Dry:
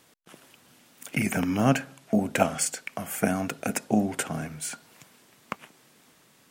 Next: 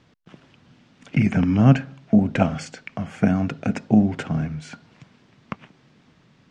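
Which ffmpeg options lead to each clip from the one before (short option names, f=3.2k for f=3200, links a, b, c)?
-af "lowpass=f=5.8k:w=0.5412,lowpass=f=5.8k:w=1.3066,bass=f=250:g=13,treble=f=4k:g=-5"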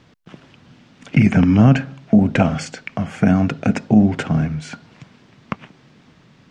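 -af "alimiter=level_in=8dB:limit=-1dB:release=50:level=0:latency=1,volume=-2dB"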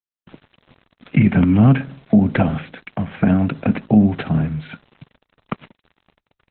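-filter_complex "[0:a]acrossover=split=260[a][b];[b]acompressor=threshold=-14dB:ratio=5[c];[a][c]amix=inputs=2:normalize=0,aeval=exprs='val(0)*gte(abs(val(0)),0.00794)':c=same" -ar 48000 -c:a libopus -b:a 8k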